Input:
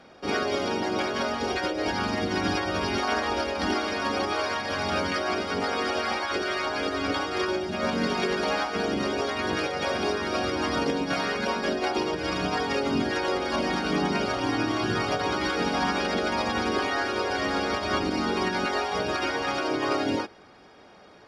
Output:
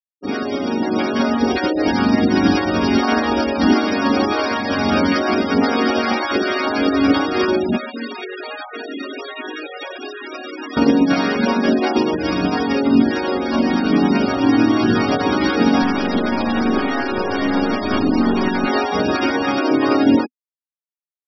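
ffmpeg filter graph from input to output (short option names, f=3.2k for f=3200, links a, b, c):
-filter_complex "[0:a]asettb=1/sr,asplit=3[a][b][c];[a]atrim=end=7.774[d];[b]atrim=start=7.77:end=10.77,asetpts=PTS-STARTPTS,afade=t=in:d=0.004:c=qsin,afade=t=out:st=2.996:d=0.004:c=qsin,highpass=f=270:w=0.5412,highpass=f=270:w=1.3066,equalizer=f=4.6k:w=0.92:g=2.5,acrossover=split=1400|3600[e][f][g];[e]acompressor=threshold=-41dB:ratio=4[h];[f]acompressor=threshold=-39dB:ratio=4[i];[g]acompressor=threshold=-50dB:ratio=4[j];[h][i][j]amix=inputs=3:normalize=0[k];[c]atrim=start=10.766[l];[d][k]acrossfade=d=0.004:c1=hsin:c2=qsin[m];[m][l]acrossfade=d=0.004:c1=qsin:c2=hsin,asettb=1/sr,asplit=3[n][o][p];[n]atrim=end=15.824[q];[o]atrim=start=15.82:end=18.68,asetpts=PTS-STARTPTS,afade=t=in:d=0.004:c=qsin,afade=t=out:st=2.856:d=0.004:c=qsin,aeval=exprs='clip(val(0),-1,0.0178)':c=same,aecho=1:1:159:0.0891,atrim=end_sample=126126[r];[p]atrim=start=18.676[s];[q][r]acrossfade=d=0.004:c1=hsin:c2=qsin[t];[t][s]acrossfade=d=0.004:c1=qsin:c2=hsin,afftfilt=real='re*gte(hypot(re,im),0.0316)':imag='im*gte(hypot(re,im),0.0316)':win_size=1024:overlap=0.75,equalizer=f=250:t=o:w=0.59:g=13,dynaudnorm=f=380:g=5:m=8dB"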